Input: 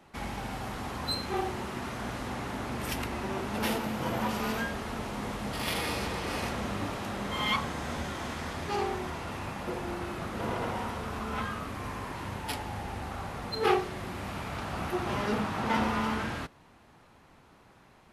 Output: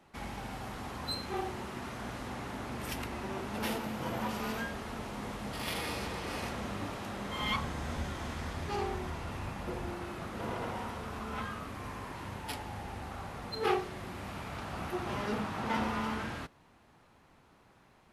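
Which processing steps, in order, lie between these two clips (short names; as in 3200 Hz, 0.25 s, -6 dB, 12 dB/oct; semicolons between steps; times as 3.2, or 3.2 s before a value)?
7.42–9.9 low shelf 89 Hz +11.5 dB; gain -4.5 dB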